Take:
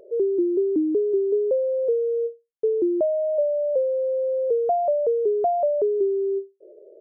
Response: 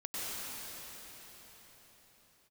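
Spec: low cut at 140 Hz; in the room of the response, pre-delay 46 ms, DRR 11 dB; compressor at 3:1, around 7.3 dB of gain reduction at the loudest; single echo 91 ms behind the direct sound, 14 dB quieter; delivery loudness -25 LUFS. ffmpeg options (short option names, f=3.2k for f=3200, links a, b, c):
-filter_complex "[0:a]highpass=140,acompressor=threshold=-28dB:ratio=3,aecho=1:1:91:0.2,asplit=2[a][b];[1:a]atrim=start_sample=2205,adelay=46[c];[b][c]afir=irnorm=-1:irlink=0,volume=-15.5dB[d];[a][d]amix=inputs=2:normalize=0,volume=3.5dB"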